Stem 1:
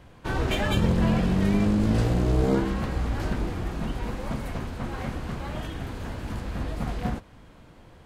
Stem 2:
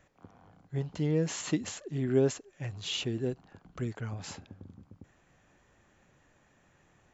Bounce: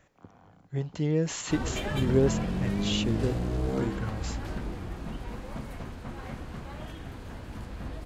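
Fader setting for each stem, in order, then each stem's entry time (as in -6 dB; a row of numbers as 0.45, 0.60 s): -7.0, +2.0 dB; 1.25, 0.00 s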